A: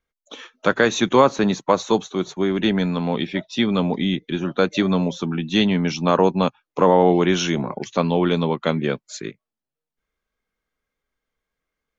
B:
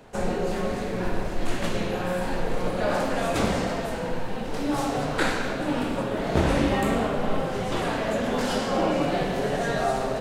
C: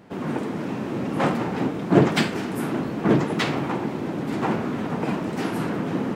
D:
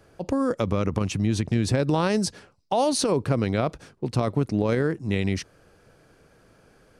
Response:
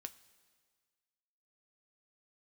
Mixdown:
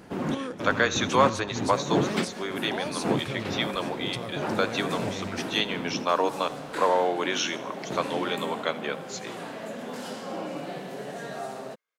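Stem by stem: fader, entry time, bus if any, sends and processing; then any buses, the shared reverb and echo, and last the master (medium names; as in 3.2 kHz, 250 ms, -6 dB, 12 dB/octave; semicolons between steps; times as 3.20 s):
-3.0 dB, 0.00 s, no send, echo send -18 dB, high-pass 620 Hz 12 dB/octave; band-stop 830 Hz
-10.5 dB, 1.55 s, no send, no echo send, high-pass 140 Hz 24 dB/octave; treble shelf 10 kHz +7 dB
-1.0 dB, 0.00 s, send -9.5 dB, no echo send, trance gate "xxxx...xxx." 174 bpm -12 dB; auto duck -12 dB, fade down 1.85 s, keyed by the fourth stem
+1.5 dB, 0.00 s, no send, no echo send, tilt shelf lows -3 dB; compression, threshold -31 dBFS, peak gain reduction 11.5 dB; peak limiter -27.5 dBFS, peak gain reduction 9.5 dB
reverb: on, pre-delay 3 ms
echo: feedback delay 81 ms, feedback 57%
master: none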